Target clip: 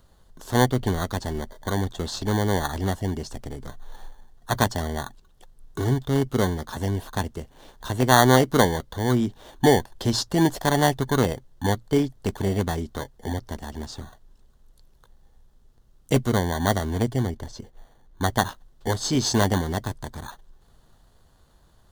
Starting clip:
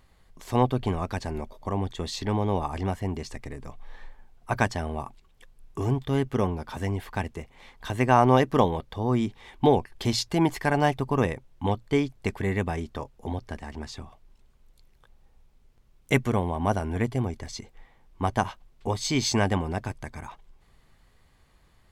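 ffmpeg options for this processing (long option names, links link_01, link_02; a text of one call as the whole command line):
ffmpeg -i in.wav -filter_complex "[0:a]asettb=1/sr,asplit=3[link_01][link_02][link_03];[link_01]atrim=end=17.224[link_04];[link_02]atrim=start=17.22:end=18.3,asetpts=PTS-STARTPTS,afade=type=in:duration=0.004:curve=qsin,afade=type=out:start_time=1.076:duration=0.004:curve=qsin,highshelf=frequency=3600:gain=-11.5[link_05];[link_03]atrim=start=18.296[link_06];[link_04][link_05]acrossfade=duration=0.004:curve1=hsin:curve2=qsin[link_07];[link_07][link_06]acrossfade=duration=0.004:curve1=qsin:curve2=hsin,acrossover=split=480|2900[link_08][link_09][link_10];[link_09]acrusher=samples=17:mix=1:aa=0.000001[link_11];[link_08][link_11][link_10]amix=inputs=3:normalize=0,volume=3dB" out.wav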